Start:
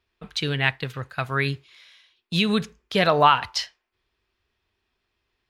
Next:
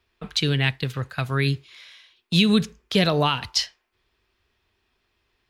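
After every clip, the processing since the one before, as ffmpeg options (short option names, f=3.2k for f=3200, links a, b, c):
-filter_complex "[0:a]acrossover=split=390|3000[a][b][c];[b]acompressor=threshold=-41dB:ratio=2[d];[a][d][c]amix=inputs=3:normalize=0,volume=5dB"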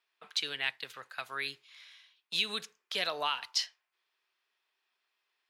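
-af "highpass=770,volume=-8dB"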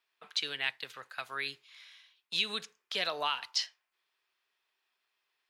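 -filter_complex "[0:a]acrossover=split=8400[a][b];[b]acompressor=threshold=-60dB:ratio=4:attack=1:release=60[c];[a][c]amix=inputs=2:normalize=0"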